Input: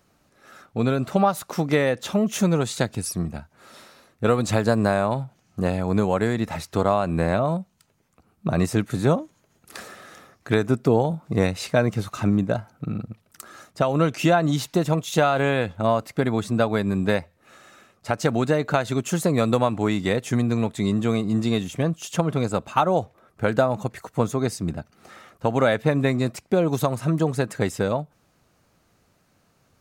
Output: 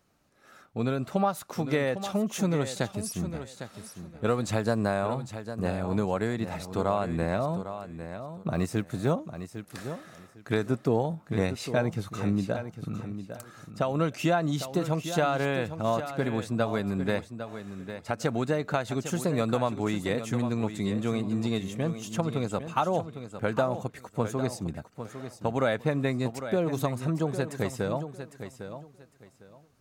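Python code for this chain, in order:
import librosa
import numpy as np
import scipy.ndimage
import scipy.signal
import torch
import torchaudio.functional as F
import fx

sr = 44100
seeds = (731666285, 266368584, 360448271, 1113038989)

p1 = fx.law_mismatch(x, sr, coded='A', at=(8.53, 9.11))
p2 = p1 + fx.echo_feedback(p1, sr, ms=804, feedback_pct=22, wet_db=-10.5, dry=0)
y = p2 * 10.0 ** (-6.5 / 20.0)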